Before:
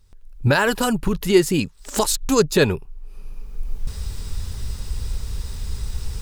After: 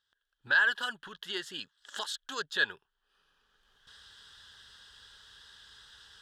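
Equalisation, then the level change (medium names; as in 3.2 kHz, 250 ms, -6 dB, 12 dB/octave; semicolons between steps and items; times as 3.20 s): two resonant band-passes 2.3 kHz, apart 0.98 oct; 0.0 dB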